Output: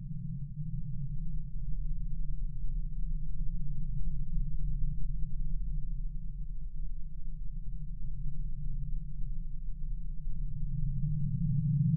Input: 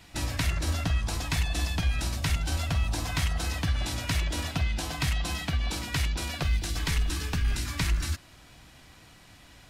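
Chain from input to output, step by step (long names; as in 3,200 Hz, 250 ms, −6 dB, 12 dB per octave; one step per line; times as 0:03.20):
spectral envelope exaggerated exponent 1.5
high-pass filter 110 Hz 12 dB per octave
comb filter 1.4 ms, depth 95%
hard clipping −22.5 dBFS, distortion −19 dB
spectral peaks only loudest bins 1
speed change −19%
phases set to zero 144 Hz
extreme stretch with random phases 40×, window 0.05 s, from 0:01.91
level +14 dB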